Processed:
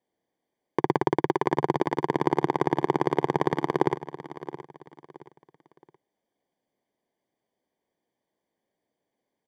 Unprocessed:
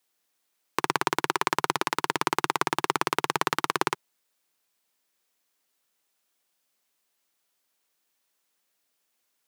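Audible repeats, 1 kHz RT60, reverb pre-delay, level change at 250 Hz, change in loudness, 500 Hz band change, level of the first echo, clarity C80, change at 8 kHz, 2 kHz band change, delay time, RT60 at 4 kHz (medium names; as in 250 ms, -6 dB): 3, no reverb, no reverb, +8.5 dB, +1.0 dB, +7.5 dB, -14.0 dB, no reverb, under -15 dB, -7.0 dB, 672 ms, no reverb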